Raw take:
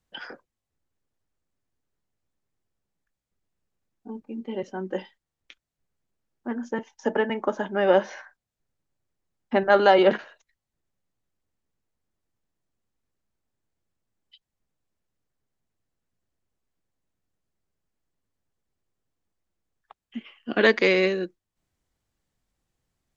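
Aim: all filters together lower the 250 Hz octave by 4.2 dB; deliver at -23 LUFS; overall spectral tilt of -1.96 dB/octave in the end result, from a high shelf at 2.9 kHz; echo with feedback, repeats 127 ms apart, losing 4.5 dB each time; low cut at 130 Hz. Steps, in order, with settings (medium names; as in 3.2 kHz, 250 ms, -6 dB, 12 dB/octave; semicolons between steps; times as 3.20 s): high-pass 130 Hz; peaking EQ 250 Hz -6 dB; treble shelf 2.9 kHz -3 dB; feedback delay 127 ms, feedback 60%, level -4.5 dB; trim +0.5 dB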